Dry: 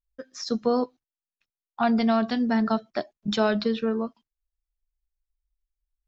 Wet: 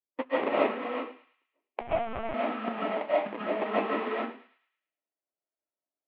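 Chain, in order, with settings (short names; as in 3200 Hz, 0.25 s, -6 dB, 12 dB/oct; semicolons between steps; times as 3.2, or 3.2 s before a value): bin magnitudes rounded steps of 15 dB; gate -55 dBFS, range -18 dB; negative-ratio compressor -34 dBFS, ratio -1; sample-rate reducer 1500 Hz, jitter 20%; Chebyshev band-pass 270–2900 Hz, order 3; air absorption 290 m; thinning echo 0.108 s, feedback 48%, high-pass 1200 Hz, level -13.5 dB; reverb RT60 0.35 s, pre-delay 0.105 s, DRR -8.5 dB; 1.81–2.34 LPC vocoder at 8 kHz pitch kept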